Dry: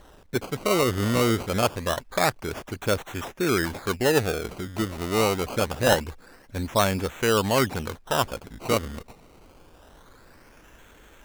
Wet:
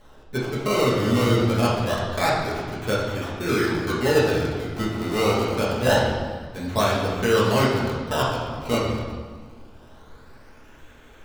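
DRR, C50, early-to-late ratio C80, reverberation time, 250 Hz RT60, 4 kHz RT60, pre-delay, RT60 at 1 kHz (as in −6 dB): −6.5 dB, 1.0 dB, 3.5 dB, 1.5 s, 2.0 s, 1.2 s, 5 ms, 1.4 s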